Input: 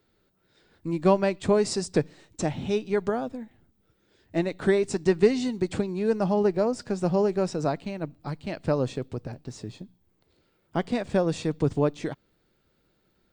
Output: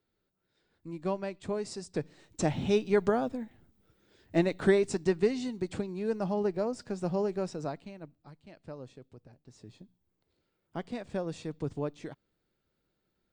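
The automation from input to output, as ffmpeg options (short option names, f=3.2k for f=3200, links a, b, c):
-af "volume=8.5dB,afade=t=in:st=1.92:d=0.64:silence=0.251189,afade=t=out:st=4.48:d=0.74:silence=0.446684,afade=t=out:st=7.35:d=0.97:silence=0.251189,afade=t=in:st=9.41:d=0.4:silence=0.375837"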